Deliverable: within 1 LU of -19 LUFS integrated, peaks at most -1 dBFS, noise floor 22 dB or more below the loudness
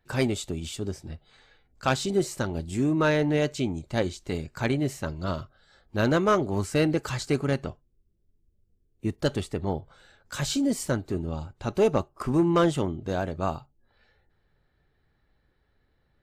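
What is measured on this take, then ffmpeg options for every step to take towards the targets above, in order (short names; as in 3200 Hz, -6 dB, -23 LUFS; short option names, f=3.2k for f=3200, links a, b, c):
loudness -27.5 LUFS; peak -13.0 dBFS; loudness target -19.0 LUFS
-> -af "volume=8.5dB"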